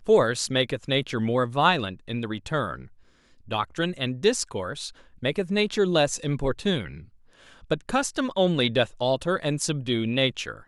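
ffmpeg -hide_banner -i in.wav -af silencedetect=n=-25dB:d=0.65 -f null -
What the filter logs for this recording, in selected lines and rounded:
silence_start: 2.74
silence_end: 3.52 | silence_duration: 0.78
silence_start: 6.86
silence_end: 7.71 | silence_duration: 0.85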